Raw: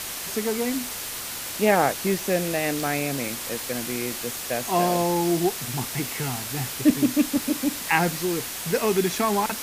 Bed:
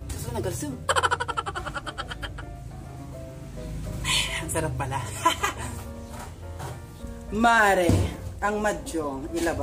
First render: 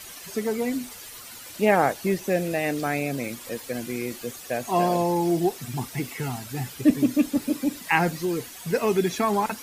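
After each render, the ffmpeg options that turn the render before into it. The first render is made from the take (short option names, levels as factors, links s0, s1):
-af "afftdn=nr=12:nf=-33"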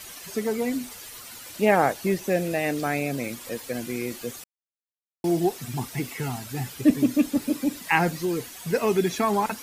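-filter_complex "[0:a]asplit=3[s0][s1][s2];[s0]atrim=end=4.44,asetpts=PTS-STARTPTS,afade=t=out:st=4.436:d=0.004:c=hsin[s3];[s1]atrim=start=4.44:end=5.24,asetpts=PTS-STARTPTS,volume=0[s4];[s2]atrim=start=5.24,asetpts=PTS-STARTPTS,afade=t=in:d=0.004:c=hsin[s5];[s3][s4][s5]concat=n=3:v=0:a=1"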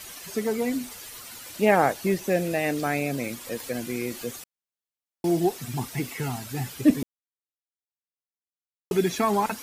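-filter_complex "[0:a]asettb=1/sr,asplit=3[s0][s1][s2];[s0]atrim=end=3.604[s3];[s1]atrim=start=3.6:end=4.37,asetpts=PTS-STARTPTS,afade=t=in:d=0.004:c=qsin,afade=t=out:st=0.766:d=0.004:c=qsin,acompressor=mode=upward:threshold=0.0224:ratio=2.5:attack=3.2:release=140:knee=2.83:detection=peak[s4];[s2]atrim=start=4.366[s5];[s3][s4]acrossfade=d=0.004:c1=hsin:c2=qsin[s6];[s6][s5]acrossfade=d=0.004:c1=qsin:c2=hsin,asplit=3[s7][s8][s9];[s7]atrim=end=7.03,asetpts=PTS-STARTPTS,afade=t=out:st=7.026:d=0.004:c=hsin[s10];[s8]atrim=start=7.03:end=8.91,asetpts=PTS-STARTPTS,volume=0[s11];[s9]atrim=start=8.91,asetpts=PTS-STARTPTS,afade=t=in:d=0.004:c=hsin[s12];[s10][s11][s12]concat=n=3:v=0:a=1"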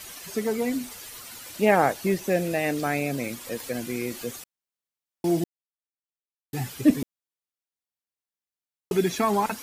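-filter_complex "[0:a]asplit=3[s0][s1][s2];[s0]atrim=end=5.44,asetpts=PTS-STARTPTS,afade=t=out:st=5.436:d=0.004:c=hsin[s3];[s1]atrim=start=5.44:end=6.53,asetpts=PTS-STARTPTS,volume=0[s4];[s2]atrim=start=6.53,asetpts=PTS-STARTPTS,afade=t=in:d=0.004:c=hsin[s5];[s3][s4][s5]concat=n=3:v=0:a=1"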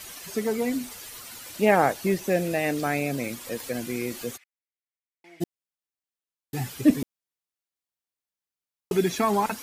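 -filter_complex "[0:a]asplit=3[s0][s1][s2];[s0]afade=t=out:st=4.36:d=0.02[s3];[s1]bandpass=f=2100:t=q:w=5.7,afade=t=in:st=4.36:d=0.02,afade=t=out:st=5.4:d=0.02[s4];[s2]afade=t=in:st=5.4:d=0.02[s5];[s3][s4][s5]amix=inputs=3:normalize=0"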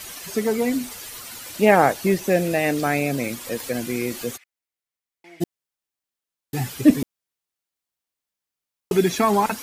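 -af "volume=1.68"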